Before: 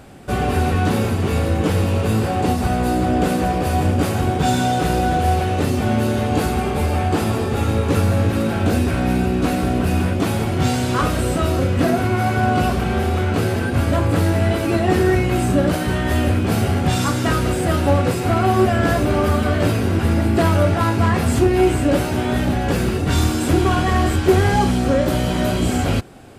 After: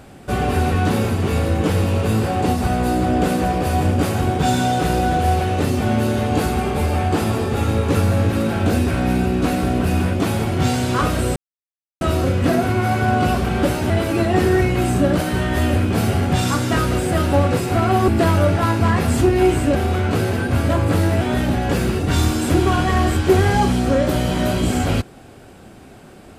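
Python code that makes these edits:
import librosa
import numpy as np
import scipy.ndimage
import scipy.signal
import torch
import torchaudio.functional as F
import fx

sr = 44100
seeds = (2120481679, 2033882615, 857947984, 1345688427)

y = fx.edit(x, sr, fx.insert_silence(at_s=11.36, length_s=0.65),
    fx.swap(start_s=12.98, length_s=1.46, other_s=21.93, other_length_s=0.27),
    fx.cut(start_s=18.62, length_s=1.64), tone=tone)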